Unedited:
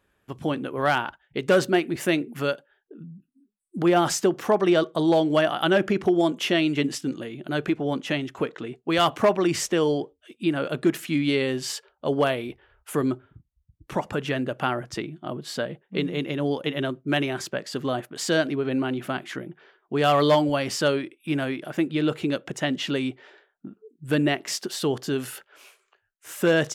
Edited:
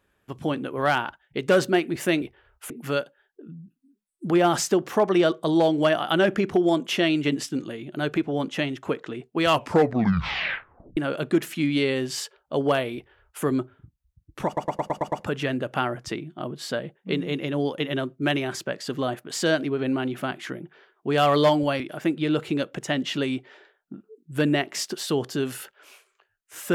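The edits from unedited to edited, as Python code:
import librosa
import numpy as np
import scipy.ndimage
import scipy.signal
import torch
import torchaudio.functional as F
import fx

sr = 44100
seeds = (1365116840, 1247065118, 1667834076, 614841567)

y = fx.edit(x, sr, fx.tape_stop(start_s=8.94, length_s=1.55),
    fx.duplicate(start_s=12.47, length_s=0.48, to_s=2.22),
    fx.stutter(start_s=13.98, slice_s=0.11, count=7),
    fx.cut(start_s=20.66, length_s=0.87), tone=tone)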